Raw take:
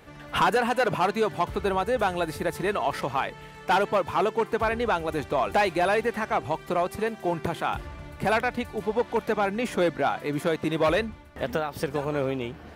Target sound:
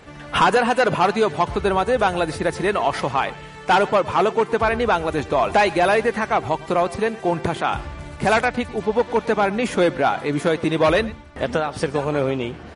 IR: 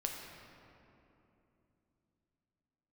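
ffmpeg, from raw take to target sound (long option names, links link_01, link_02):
-filter_complex "[0:a]asplit=3[link_01][link_02][link_03];[link_01]afade=type=out:start_time=7.99:duration=0.02[link_04];[link_02]acrusher=bits=4:mode=log:mix=0:aa=0.000001,afade=type=in:start_time=7.99:duration=0.02,afade=type=out:start_time=8.45:duration=0.02[link_05];[link_03]afade=type=in:start_time=8.45:duration=0.02[link_06];[link_04][link_05][link_06]amix=inputs=3:normalize=0,asplit=2[link_07][link_08];[link_08]adelay=110.8,volume=-19dB,highshelf=frequency=4000:gain=-2.49[link_09];[link_07][link_09]amix=inputs=2:normalize=0,volume=6.5dB" -ar 32000 -c:a libmp3lame -b:a 40k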